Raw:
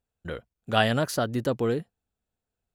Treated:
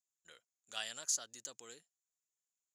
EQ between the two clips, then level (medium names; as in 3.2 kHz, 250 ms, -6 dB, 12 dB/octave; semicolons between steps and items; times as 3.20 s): band-pass filter 6.8 kHz, Q 7.8; +10.5 dB